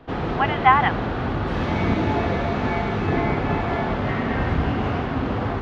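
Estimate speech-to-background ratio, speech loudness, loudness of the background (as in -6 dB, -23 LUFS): 4.0 dB, -20.0 LUFS, -24.0 LUFS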